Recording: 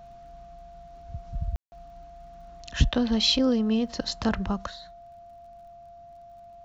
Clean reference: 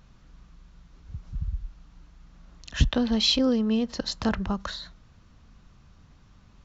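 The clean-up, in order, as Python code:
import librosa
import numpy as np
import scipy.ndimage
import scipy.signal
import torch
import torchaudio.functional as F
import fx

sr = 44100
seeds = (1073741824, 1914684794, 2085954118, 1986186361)

y = fx.fix_declick_ar(x, sr, threshold=6.5)
y = fx.notch(y, sr, hz=690.0, q=30.0)
y = fx.fix_ambience(y, sr, seeds[0], print_start_s=6.05, print_end_s=6.55, start_s=1.56, end_s=1.72)
y = fx.fix_level(y, sr, at_s=4.67, step_db=7.0)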